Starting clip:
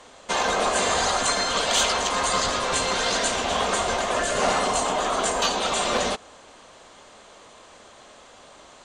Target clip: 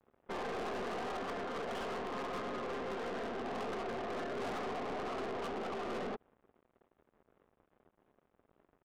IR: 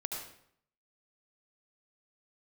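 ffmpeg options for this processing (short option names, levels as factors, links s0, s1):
-af "highpass=f=180:w=0.5412,highpass=f=180:w=1.3066,equalizer=f=220:t=q:w=4:g=3,equalizer=f=390:t=q:w=4:g=6,equalizer=f=590:t=q:w=4:g=-6,equalizer=f=960:t=q:w=4:g=-7,equalizer=f=1500:t=q:w=4:g=-4,equalizer=f=2400:t=q:w=4:g=-9,lowpass=f=3000:w=0.5412,lowpass=f=3000:w=1.3066,aresample=8000,aeval=exprs='sgn(val(0))*max(abs(val(0))-0.00398,0)':c=same,aresample=44100,adynamicsmooth=sensitivity=1:basefreq=1100,aeval=exprs='(tanh(56.2*val(0)+0.3)-tanh(0.3))/56.2':c=same,volume=0.794"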